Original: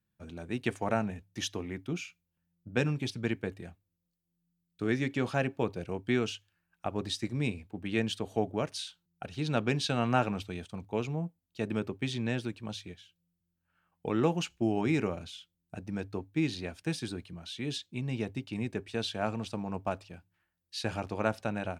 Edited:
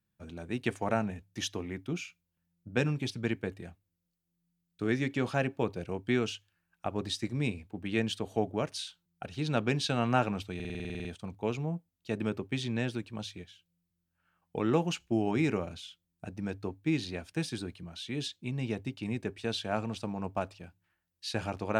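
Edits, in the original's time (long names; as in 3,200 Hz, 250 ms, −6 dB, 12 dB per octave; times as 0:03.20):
0:10.55: stutter 0.05 s, 11 plays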